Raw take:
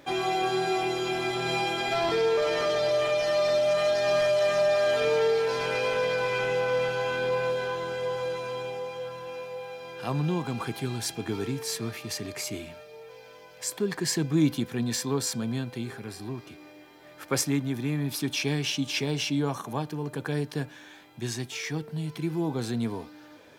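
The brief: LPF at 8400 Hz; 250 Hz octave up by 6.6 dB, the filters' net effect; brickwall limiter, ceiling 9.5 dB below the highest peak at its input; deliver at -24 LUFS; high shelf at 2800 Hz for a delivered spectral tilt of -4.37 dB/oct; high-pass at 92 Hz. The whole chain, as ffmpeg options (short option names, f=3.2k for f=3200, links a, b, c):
-af "highpass=92,lowpass=8.4k,equalizer=f=250:t=o:g=8.5,highshelf=f=2.8k:g=6.5,volume=2.5dB,alimiter=limit=-14.5dB:level=0:latency=1"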